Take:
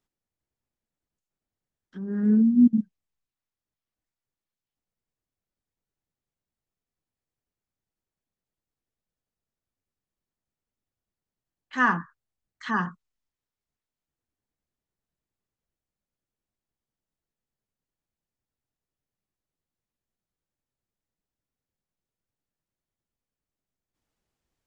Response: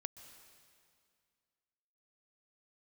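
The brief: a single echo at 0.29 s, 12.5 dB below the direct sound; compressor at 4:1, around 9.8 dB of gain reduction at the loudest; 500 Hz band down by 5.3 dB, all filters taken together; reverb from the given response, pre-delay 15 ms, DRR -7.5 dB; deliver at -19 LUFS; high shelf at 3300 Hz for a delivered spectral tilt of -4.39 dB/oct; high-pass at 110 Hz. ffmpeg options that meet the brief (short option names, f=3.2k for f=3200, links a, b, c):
-filter_complex "[0:a]highpass=110,equalizer=f=500:t=o:g=-7,highshelf=f=3.3k:g=8,acompressor=threshold=-26dB:ratio=4,aecho=1:1:290:0.237,asplit=2[a][b];[1:a]atrim=start_sample=2205,adelay=15[c];[b][c]afir=irnorm=-1:irlink=0,volume=11dB[d];[a][d]amix=inputs=2:normalize=0,volume=5dB"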